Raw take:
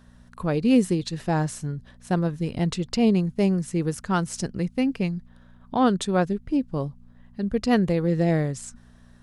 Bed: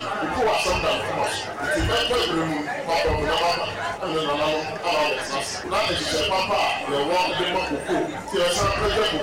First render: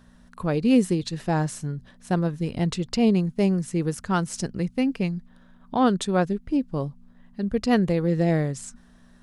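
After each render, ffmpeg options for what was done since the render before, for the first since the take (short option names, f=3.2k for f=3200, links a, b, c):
-af "bandreject=f=60:t=h:w=4,bandreject=f=120:t=h:w=4"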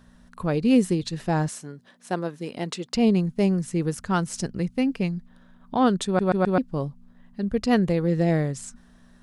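-filter_complex "[0:a]asettb=1/sr,asplit=3[a][b][c];[a]atrim=end=1.484[d];[b]atrim=start=1.48:end=2.95,asetpts=PTS-STARTPTS,afade=t=in:d=0.004:c=qsin,afade=t=out:st=1.466:d=0.004:c=qsin,highpass=290[e];[c]atrim=start=2.946[f];[d][e]acrossfade=d=0.004:c1=hsin:c2=qsin[g];[g][f]acrossfade=d=0.004:c1=qsin:c2=hsin,asplit=5[h][i][j][k][l];[h]atrim=end=6.192[m];[i]atrim=start=6.058:end=6.192[n];[j]atrim=start=6.058:end=6.192[o];[k]atrim=start=6.058:end=6.192[p];[l]atrim=start=6.578[q];[m][n]acrossfade=d=0.004:c1=hsin:c2=hsin[r];[r][o]acrossfade=d=0.004:c1=hsin:c2=hsin[s];[s][p]acrossfade=d=0.004:c1=hsin:c2=hsin[t];[t][q]acrossfade=d=0.004:c1=hsin:c2=hsin"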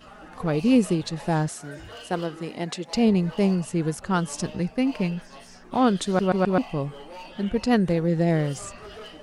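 -filter_complex "[1:a]volume=-20dB[a];[0:a][a]amix=inputs=2:normalize=0"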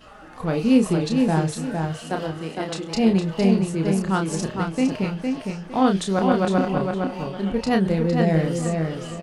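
-filter_complex "[0:a]asplit=2[a][b];[b]adelay=31,volume=-5.5dB[c];[a][c]amix=inputs=2:normalize=0,asplit=2[d][e];[e]adelay=459,lowpass=f=4.8k:p=1,volume=-4dB,asplit=2[f][g];[g]adelay=459,lowpass=f=4.8k:p=1,volume=0.31,asplit=2[h][i];[i]adelay=459,lowpass=f=4.8k:p=1,volume=0.31,asplit=2[j][k];[k]adelay=459,lowpass=f=4.8k:p=1,volume=0.31[l];[d][f][h][j][l]amix=inputs=5:normalize=0"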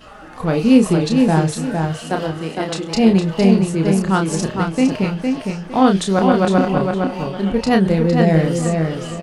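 -af "volume=5.5dB,alimiter=limit=-1dB:level=0:latency=1"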